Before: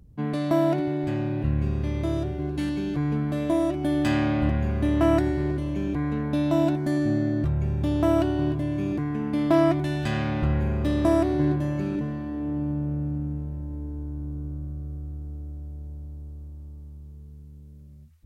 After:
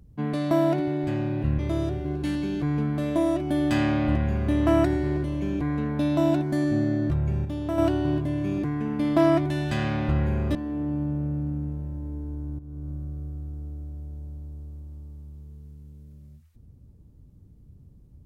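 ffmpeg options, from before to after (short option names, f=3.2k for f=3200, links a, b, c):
-filter_complex "[0:a]asplit=6[a][b][c][d][e][f];[a]atrim=end=1.592[g];[b]atrim=start=1.928:end=7.792[h];[c]atrim=start=7.788:end=8.122,asetpts=PTS-STARTPTS,volume=-6.5dB[i];[d]atrim=start=8.118:end=10.892[j];[e]atrim=start=12.228:end=14.27,asetpts=PTS-STARTPTS,afade=t=out:st=2.038:d=0.004:c=hsin:silence=0.223872[k];[f]atrim=start=14.27,asetpts=PTS-STARTPTS,afade=t=in:d=0.32:silence=0.223872[l];[g][h]acrossfade=d=0.004:c1=hsin:c2=hsin[m];[m][i]acrossfade=d=0.004:c1=hsin:c2=hsin[n];[n][j]acrossfade=d=0.004:c1=hsin:c2=hsin[o];[k][l]concat=n=2:v=0:a=1[p];[o][p]acrossfade=d=0.004:c1=hsin:c2=hsin"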